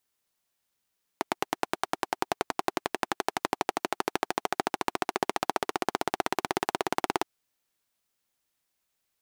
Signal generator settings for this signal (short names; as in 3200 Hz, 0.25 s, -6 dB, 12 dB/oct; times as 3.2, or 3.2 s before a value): single-cylinder engine model, changing speed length 6.02 s, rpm 1100, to 2100, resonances 380/750 Hz